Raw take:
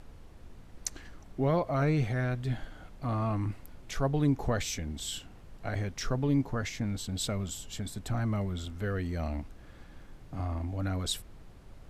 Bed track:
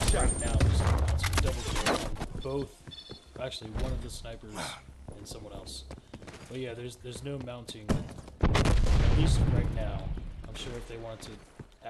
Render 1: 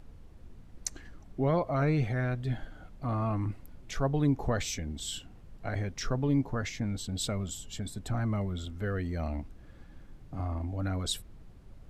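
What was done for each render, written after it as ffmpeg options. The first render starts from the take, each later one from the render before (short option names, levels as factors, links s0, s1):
-af "afftdn=nr=6:nf=-51"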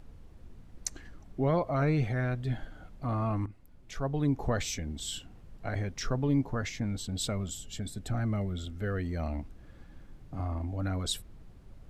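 -filter_complex "[0:a]asettb=1/sr,asplit=3[s0][s1][s2];[s0]atrim=end=7.494[s3];[s1]atrim=start=7.49:end=8.89,asetpts=PTS-STARTPTS,afade=t=in:d=0.004:c=qsin,afade=t=out:st=1.396:d=0.004:c=qsin,equalizer=f=1000:t=o:w=0.33:g=-8.5[s4];[s2]atrim=start=8.886[s5];[s3][s4]acrossfade=d=0.004:c1=hsin:c2=qsin[s6];[s6][s5]acrossfade=d=0.004:c1=qsin:c2=hsin,asplit=2[s7][s8];[s7]atrim=end=3.46,asetpts=PTS-STARTPTS,afade=t=out:st=3.456:d=0.004:c=hsin:silence=0.223872[s9];[s8]atrim=start=3.46,asetpts=PTS-STARTPTS,afade=t=in:d=1.04:silence=0.223872[s10];[s9][s10]concat=n=2:v=0:a=1"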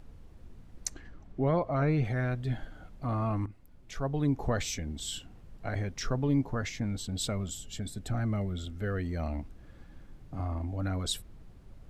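-filter_complex "[0:a]asettb=1/sr,asplit=3[s0][s1][s2];[s0]atrim=end=0.944[s3];[s1]atrim=start=0.94:end=2.05,asetpts=PTS-STARTPTS,afade=t=in:d=0.004:c=qsin,afade=t=out:st=1.106:d=0.004:c=qsin,lowpass=f=3300:p=1[s4];[s2]atrim=start=2.046[s5];[s3][s4]acrossfade=d=0.004:c1=hsin:c2=qsin[s6];[s6][s5]acrossfade=d=0.004:c1=qsin:c2=hsin"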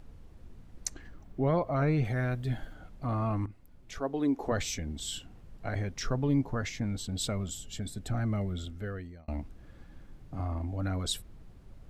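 -filter_complex "[0:a]asettb=1/sr,asplit=3[s0][s1][s2];[s0]atrim=end=1.004[s3];[s1]atrim=start=1:end=2.74,asetpts=PTS-STARTPTS,afade=t=in:d=0.004:c=qsin,afade=t=out:st=1.736:d=0.004:c=qsin,highshelf=f=11000:g=12[s4];[s2]atrim=start=2.736[s5];[s3][s4]acrossfade=d=0.004:c1=hsin:c2=qsin[s6];[s6][s5]acrossfade=d=0.004:c1=qsin:c2=hsin,asettb=1/sr,asplit=3[s7][s8][s9];[s7]atrim=end=3.984[s10];[s8]atrim=start=3.98:end=4.52,asetpts=PTS-STARTPTS,afade=t=in:d=0.004:c=qsin,afade=t=out:st=0.536:d=0.004:c=qsin,lowshelf=f=190:t=q:w=1.5:g=-13[s11];[s9]atrim=start=4.516[s12];[s10][s11]acrossfade=d=0.004:c1=hsin:c2=qsin[s13];[s13][s12]acrossfade=d=0.004:c1=qsin:c2=hsin,asplit=2[s14][s15];[s14]atrim=end=9.28,asetpts=PTS-STARTPTS,afade=t=out:st=8.61:d=0.67[s16];[s15]atrim=start=9.28,asetpts=PTS-STARTPTS,afade=t=in:d=0.004:c=hsin[s17];[s16][s17]concat=n=2:v=0:a=1"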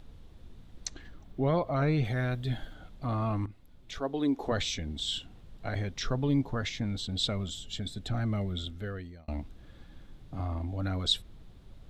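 -filter_complex "[0:a]acrossover=split=6900[s0][s1];[s1]acompressor=threshold=0.00112:ratio=4:attack=1:release=60[s2];[s0][s2]amix=inputs=2:normalize=0,equalizer=f=3600:w=2.6:g=9.5"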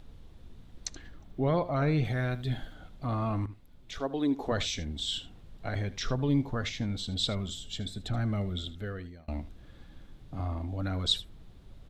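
-af "aecho=1:1:77:0.15"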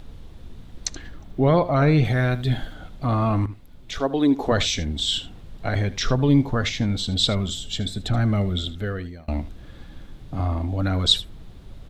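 -af "volume=2.99"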